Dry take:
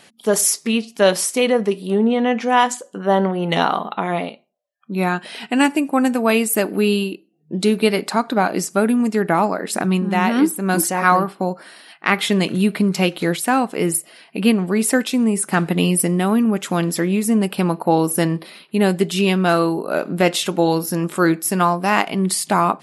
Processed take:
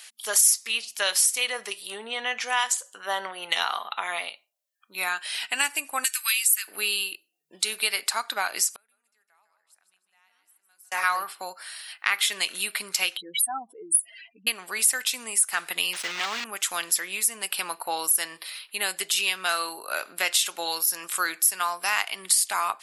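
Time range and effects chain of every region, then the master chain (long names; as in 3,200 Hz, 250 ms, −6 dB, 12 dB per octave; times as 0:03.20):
0:06.04–0:06.68: Bessel high-pass filter 2,300 Hz, order 8 + multiband upward and downward compressor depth 70%
0:08.73–0:10.92: repeating echo 154 ms, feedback 36%, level −8 dB + gate with flip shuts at −15 dBFS, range −41 dB + parametric band 300 Hz −9 dB 0.53 octaves
0:13.17–0:14.47: expanding power law on the bin magnitudes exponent 3.8 + notch filter 4,300 Hz, Q 15 + dynamic equaliser 1,100 Hz, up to +5 dB, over −41 dBFS, Q 4.9
0:15.93–0:16.45: one scale factor per block 3 bits + high-frequency loss of the air 180 metres
whole clip: high-pass filter 1,400 Hz 12 dB per octave; high-shelf EQ 4,700 Hz +10 dB; downward compressor 2 to 1, threshold −23 dBFS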